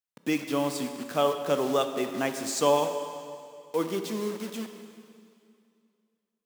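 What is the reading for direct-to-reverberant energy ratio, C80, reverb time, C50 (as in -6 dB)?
6.5 dB, 8.5 dB, 2.4 s, 7.5 dB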